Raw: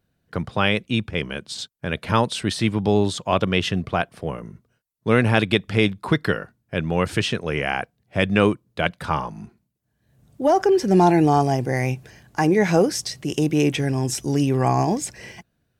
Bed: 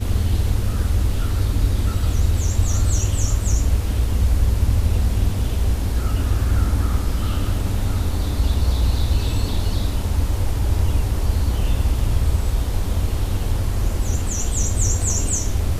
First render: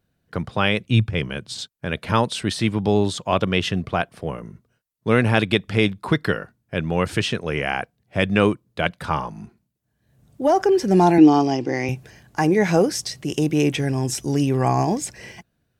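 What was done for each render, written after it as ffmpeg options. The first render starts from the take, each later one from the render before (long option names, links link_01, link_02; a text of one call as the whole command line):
ffmpeg -i in.wav -filter_complex "[0:a]asettb=1/sr,asplit=3[link_01][link_02][link_03];[link_01]atrim=end=0.804[link_04];[link_02]atrim=start=0.8:end=1.59,asetpts=PTS-STARTPTS,afade=type=in:duration=0.004:curve=qsin,afade=type=out:start_time=0.786:duration=0.004:curve=qsin,equalizer=frequency=110:width_type=o:width=0.69:gain=11[link_05];[link_03]atrim=start=1.586[link_06];[link_04][link_05]acrossfade=duration=0.004:curve1=hsin:curve2=qsin[link_07];[link_07][link_06]acrossfade=duration=0.004:curve1=qsin:curve2=hsin,asettb=1/sr,asplit=3[link_08][link_09][link_10];[link_08]atrim=end=11.184[link_11];[link_09]atrim=start=11.18:end=11.89,asetpts=PTS-STARTPTS,afade=type=in:duration=0.004:curve=qsin,afade=type=out:start_time=0.706:duration=0.004:curve=qsin,highpass=200,equalizer=frequency=310:width_type=q:width=4:gain=10,equalizer=frequency=640:width_type=q:width=4:gain=-5,equalizer=frequency=1600:width_type=q:width=4:gain=-4,equalizer=frequency=2900:width_type=q:width=4:gain=6,equalizer=frequency=5200:width_type=q:width=4:gain=5,lowpass=frequency=6300:width=0.5412,lowpass=frequency=6300:width=1.3066[link_12];[link_10]atrim=start=11.886[link_13];[link_11][link_12]acrossfade=duration=0.004:curve1=hsin:curve2=qsin[link_14];[link_14][link_13]acrossfade=duration=0.004:curve1=qsin:curve2=hsin" out.wav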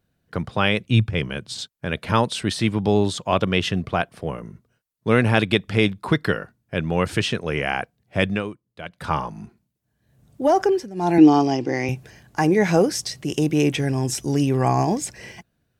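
ffmpeg -i in.wav -filter_complex "[0:a]asplit=5[link_01][link_02][link_03][link_04][link_05];[link_01]atrim=end=8.43,asetpts=PTS-STARTPTS,afade=type=out:start_time=8.27:duration=0.16:silence=0.223872[link_06];[link_02]atrim=start=8.43:end=8.91,asetpts=PTS-STARTPTS,volume=-13dB[link_07];[link_03]atrim=start=8.91:end=10.9,asetpts=PTS-STARTPTS,afade=type=in:duration=0.16:silence=0.223872,afade=type=out:start_time=1.74:duration=0.25:silence=0.105925[link_08];[link_04]atrim=start=10.9:end=10.95,asetpts=PTS-STARTPTS,volume=-19.5dB[link_09];[link_05]atrim=start=10.95,asetpts=PTS-STARTPTS,afade=type=in:duration=0.25:silence=0.105925[link_10];[link_06][link_07][link_08][link_09][link_10]concat=n=5:v=0:a=1" out.wav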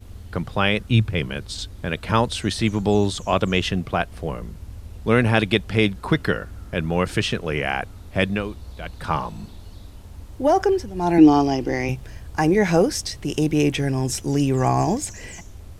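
ffmpeg -i in.wav -i bed.wav -filter_complex "[1:a]volume=-19.5dB[link_01];[0:a][link_01]amix=inputs=2:normalize=0" out.wav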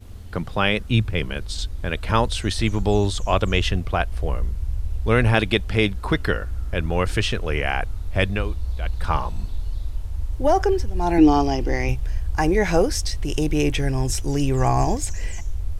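ffmpeg -i in.wav -af "asubboost=boost=10.5:cutoff=55" out.wav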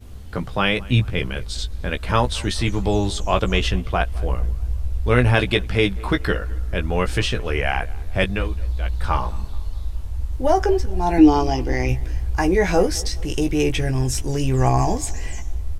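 ffmpeg -i in.wav -filter_complex "[0:a]asplit=2[link_01][link_02];[link_02]adelay=16,volume=-6.5dB[link_03];[link_01][link_03]amix=inputs=2:normalize=0,asplit=2[link_04][link_05];[link_05]adelay=214,lowpass=frequency=2600:poles=1,volume=-22dB,asplit=2[link_06][link_07];[link_07]adelay=214,lowpass=frequency=2600:poles=1,volume=0.51,asplit=2[link_08][link_09];[link_09]adelay=214,lowpass=frequency=2600:poles=1,volume=0.51,asplit=2[link_10][link_11];[link_11]adelay=214,lowpass=frequency=2600:poles=1,volume=0.51[link_12];[link_04][link_06][link_08][link_10][link_12]amix=inputs=5:normalize=0" out.wav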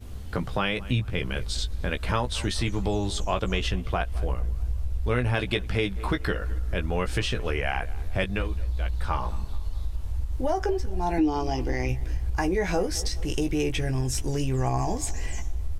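ffmpeg -i in.wav -af "acompressor=threshold=-24dB:ratio=3" out.wav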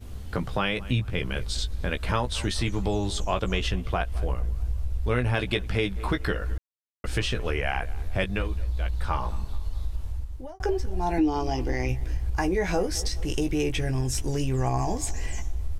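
ffmpeg -i in.wav -filter_complex "[0:a]asplit=4[link_01][link_02][link_03][link_04];[link_01]atrim=end=6.58,asetpts=PTS-STARTPTS,afade=type=out:start_time=6.576:duration=0.004:curve=hsin[link_05];[link_02]atrim=start=6.58:end=7.04,asetpts=PTS-STARTPTS,volume=0[link_06];[link_03]atrim=start=7.04:end=10.6,asetpts=PTS-STARTPTS,afade=type=in:duration=0.004:curve=hsin,afade=type=out:start_time=2.96:duration=0.6[link_07];[link_04]atrim=start=10.6,asetpts=PTS-STARTPTS,afade=type=in:duration=0.004:curve=hsin[link_08];[link_05][link_06][link_07][link_08]concat=n=4:v=0:a=1" out.wav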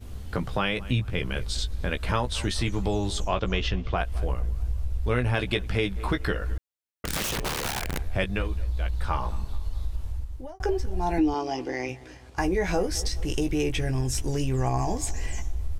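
ffmpeg -i in.wav -filter_complex "[0:a]asettb=1/sr,asplit=3[link_01][link_02][link_03];[link_01]atrim=end=3.284[link_04];[link_02]atrim=start=3.28:end=3.98,asetpts=PTS-STARTPTS,afade=type=in:duration=0.004:curve=qsin,afade=type=out:start_time=0.696:duration=0.004:curve=qsin,lowpass=frequency=5900:width=0.5412,lowpass=frequency=5900:width=1.3066[link_05];[link_03]atrim=start=3.976[link_06];[link_04][link_05]acrossfade=duration=0.004:curve1=hsin:curve2=qsin[link_07];[link_07][link_06]acrossfade=duration=0.004:curve1=qsin:curve2=hsin,asettb=1/sr,asplit=3[link_08][link_09][link_10];[link_08]atrim=end=7.054[link_11];[link_09]atrim=start=7.05:end=8.01,asetpts=PTS-STARTPTS,afade=type=in:duration=0.004:curve=qsin,afade=type=out:start_time=0.956:duration=0.004:curve=qsin,aeval=exprs='(mod(15.8*val(0)+1,2)-1)/15.8':channel_layout=same[link_12];[link_10]atrim=start=8.006[link_13];[link_11][link_12]acrossfade=duration=0.004:curve1=hsin:curve2=qsin[link_14];[link_14][link_13]acrossfade=duration=0.004:curve1=qsin:curve2=hsin,asettb=1/sr,asplit=3[link_15][link_16][link_17];[link_15]atrim=end=11.344[link_18];[link_16]atrim=start=11.34:end=12.38,asetpts=PTS-STARTPTS,afade=type=in:duration=0.004:curve=qsin,afade=type=out:start_time=1.036:duration=0.004:curve=qsin,highpass=230,lowpass=8000[link_19];[link_17]atrim=start=12.376[link_20];[link_18][link_19]acrossfade=duration=0.004:curve1=hsin:curve2=qsin[link_21];[link_21][link_20]acrossfade=duration=0.004:curve1=qsin:curve2=hsin" out.wav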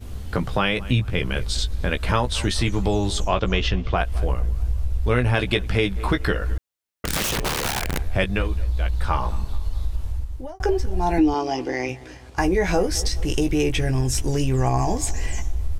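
ffmpeg -i in.wav -af "volume=5dB" out.wav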